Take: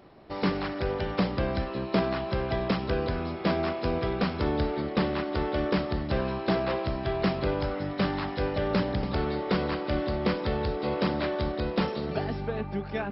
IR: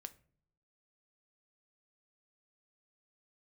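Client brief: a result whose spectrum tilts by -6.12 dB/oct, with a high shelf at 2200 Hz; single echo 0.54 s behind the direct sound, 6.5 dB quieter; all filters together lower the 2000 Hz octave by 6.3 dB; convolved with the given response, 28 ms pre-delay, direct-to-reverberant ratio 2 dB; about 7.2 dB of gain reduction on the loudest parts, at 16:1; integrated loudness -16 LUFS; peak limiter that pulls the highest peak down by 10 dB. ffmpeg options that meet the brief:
-filter_complex "[0:a]equalizer=f=2k:t=o:g=-5.5,highshelf=f=2.2k:g=-5.5,acompressor=threshold=-28dB:ratio=16,alimiter=level_in=3.5dB:limit=-24dB:level=0:latency=1,volume=-3.5dB,aecho=1:1:540:0.473,asplit=2[a][b];[1:a]atrim=start_sample=2205,adelay=28[c];[b][c]afir=irnorm=-1:irlink=0,volume=3.5dB[d];[a][d]amix=inputs=2:normalize=0,volume=17.5dB"

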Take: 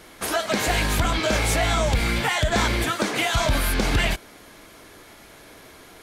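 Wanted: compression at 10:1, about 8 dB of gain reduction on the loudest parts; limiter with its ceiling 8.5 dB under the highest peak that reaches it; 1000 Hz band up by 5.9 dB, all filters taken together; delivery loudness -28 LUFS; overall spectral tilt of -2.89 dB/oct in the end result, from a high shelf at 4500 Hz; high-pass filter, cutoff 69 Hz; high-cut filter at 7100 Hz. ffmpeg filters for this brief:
-af "highpass=69,lowpass=7.1k,equalizer=f=1k:t=o:g=7.5,highshelf=f=4.5k:g=8,acompressor=threshold=-23dB:ratio=10,volume=2dB,alimiter=limit=-19.5dB:level=0:latency=1"

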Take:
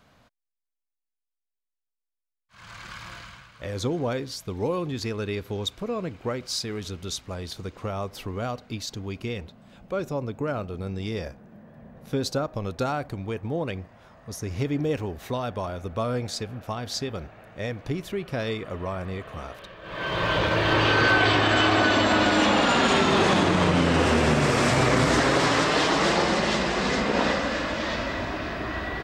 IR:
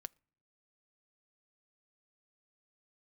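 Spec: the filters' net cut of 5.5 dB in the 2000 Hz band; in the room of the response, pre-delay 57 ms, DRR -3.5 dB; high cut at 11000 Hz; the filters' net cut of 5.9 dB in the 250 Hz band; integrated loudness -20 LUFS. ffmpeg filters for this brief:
-filter_complex "[0:a]lowpass=11k,equalizer=f=250:t=o:g=-8,equalizer=f=2k:t=o:g=-7.5,asplit=2[a][b];[1:a]atrim=start_sample=2205,adelay=57[c];[b][c]afir=irnorm=-1:irlink=0,volume=8.5dB[d];[a][d]amix=inputs=2:normalize=0,volume=3dB"

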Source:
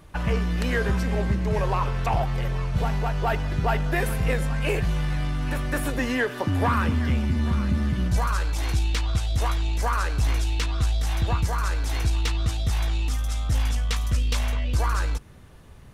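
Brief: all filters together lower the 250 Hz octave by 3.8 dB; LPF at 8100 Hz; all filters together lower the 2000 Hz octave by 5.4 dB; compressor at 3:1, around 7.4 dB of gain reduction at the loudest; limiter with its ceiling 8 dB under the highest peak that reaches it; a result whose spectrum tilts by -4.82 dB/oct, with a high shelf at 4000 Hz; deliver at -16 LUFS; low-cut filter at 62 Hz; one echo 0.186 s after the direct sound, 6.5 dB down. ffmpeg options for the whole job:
-af "highpass=62,lowpass=8.1k,equalizer=f=250:t=o:g=-5.5,equalizer=f=2k:t=o:g=-9,highshelf=f=4k:g=8,acompressor=threshold=-31dB:ratio=3,alimiter=level_in=3.5dB:limit=-24dB:level=0:latency=1,volume=-3.5dB,aecho=1:1:186:0.473,volume=19.5dB"

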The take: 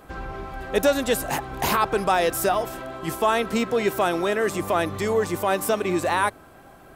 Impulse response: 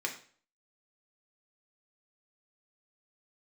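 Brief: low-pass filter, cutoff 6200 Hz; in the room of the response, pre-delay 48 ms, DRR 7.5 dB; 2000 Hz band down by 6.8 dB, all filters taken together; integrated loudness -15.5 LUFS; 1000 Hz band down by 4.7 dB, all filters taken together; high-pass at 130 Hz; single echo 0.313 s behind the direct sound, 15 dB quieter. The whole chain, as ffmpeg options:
-filter_complex "[0:a]highpass=130,lowpass=6.2k,equalizer=f=1k:t=o:g=-4.5,equalizer=f=2k:t=o:g=-7.5,aecho=1:1:313:0.178,asplit=2[a][b];[1:a]atrim=start_sample=2205,adelay=48[c];[b][c]afir=irnorm=-1:irlink=0,volume=-11.5dB[d];[a][d]amix=inputs=2:normalize=0,volume=10dB"

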